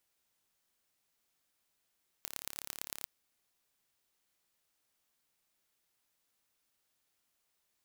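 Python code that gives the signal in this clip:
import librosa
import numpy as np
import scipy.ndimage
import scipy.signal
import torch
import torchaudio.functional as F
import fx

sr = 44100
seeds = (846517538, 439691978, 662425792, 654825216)

y = fx.impulse_train(sr, length_s=0.81, per_s=35.4, accent_every=4, level_db=-10.0)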